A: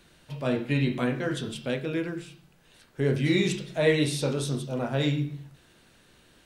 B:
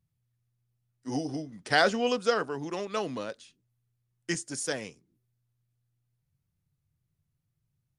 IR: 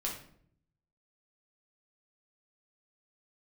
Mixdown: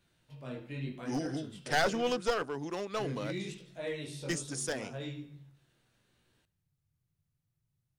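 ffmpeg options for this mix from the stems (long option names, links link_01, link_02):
-filter_complex "[0:a]flanger=delay=16:depth=7.9:speed=0.79,volume=-12dB,asplit=2[link_01][link_02];[link_02]volume=-19.5dB[link_03];[1:a]volume=-2.5dB[link_04];[link_03]aecho=0:1:72|144|216|288|360|432|504|576|648:1|0.58|0.336|0.195|0.113|0.0656|0.0381|0.0221|0.0128[link_05];[link_01][link_04][link_05]amix=inputs=3:normalize=0,aeval=exprs='clip(val(0),-1,0.0355)':channel_layout=same"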